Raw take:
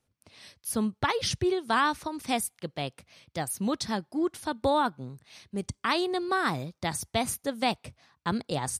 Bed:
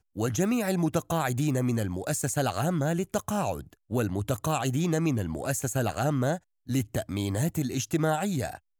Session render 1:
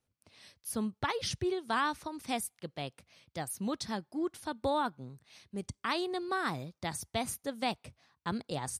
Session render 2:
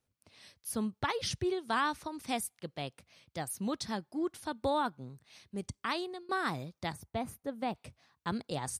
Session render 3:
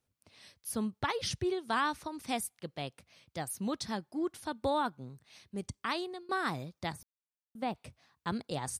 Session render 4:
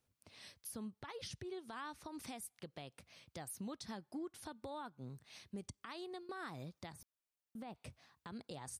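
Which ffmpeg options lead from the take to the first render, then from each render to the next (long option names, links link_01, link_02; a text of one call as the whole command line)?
ffmpeg -i in.wav -af "volume=-6dB" out.wav
ffmpeg -i in.wav -filter_complex "[0:a]asettb=1/sr,asplit=3[link_01][link_02][link_03];[link_01]atrim=end=6.924[link_04];[link_02]atrim=start=6.92:end=7.75,asetpts=PTS-STARTPTS,afade=type=in:duration=0.004:curve=qsin,afade=type=out:start_time=0.826:duration=0.004:curve=qsin,equalizer=frequency=6600:width=0.34:gain=-14.5[link_05];[link_03]atrim=start=7.746[link_06];[link_04][link_05]acrossfade=duration=0.004:curve1=hsin:curve2=qsin[link_07];[link_07][link_06]acrossfade=duration=0.004:curve1=qsin:curve2=hsin,asplit=2[link_08][link_09];[link_08]atrim=end=6.29,asetpts=PTS-STARTPTS,afade=type=out:start_time=5.69:duration=0.6:curve=qsin:silence=0.0841395[link_10];[link_09]atrim=start=6.29,asetpts=PTS-STARTPTS,afade=type=in:duration=0.004:curve=hsin:silence=0.0841395[link_11];[link_10][link_11]concat=n=2:v=0:a=1" out.wav
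ffmpeg -i in.wav -filter_complex "[0:a]asplit=3[link_01][link_02][link_03];[link_01]atrim=end=7.03,asetpts=PTS-STARTPTS,afade=type=out:start_time=7.026:duration=0.004:curve=hsin[link_04];[link_02]atrim=start=7.03:end=7.55,asetpts=PTS-STARTPTS,volume=0[link_05];[link_03]atrim=start=7.55,asetpts=PTS-STARTPTS,afade=type=in:duration=0.004:curve=hsin[link_06];[link_04][link_05][link_06]concat=n=3:v=0:a=1" out.wav
ffmpeg -i in.wav -af "acompressor=threshold=-41dB:ratio=10,alimiter=level_in=13dB:limit=-24dB:level=0:latency=1:release=116,volume=-13dB" out.wav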